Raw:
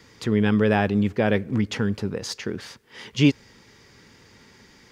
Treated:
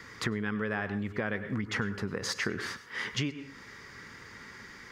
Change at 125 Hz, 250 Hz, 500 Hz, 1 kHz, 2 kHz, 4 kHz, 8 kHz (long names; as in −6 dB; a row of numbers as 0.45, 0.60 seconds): −11.5, −12.5, −12.0, −9.0, −3.0, −5.0, −2.5 decibels